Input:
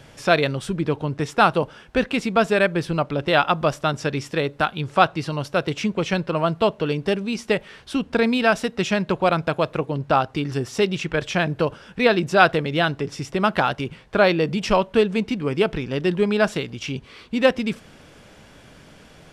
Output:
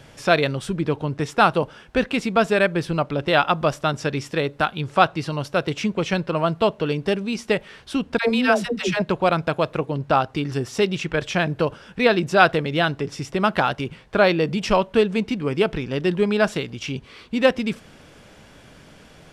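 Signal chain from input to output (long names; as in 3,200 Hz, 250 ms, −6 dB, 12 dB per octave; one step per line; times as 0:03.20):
0:08.18–0:09.02: all-pass dispersion lows, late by 104 ms, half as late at 500 Hz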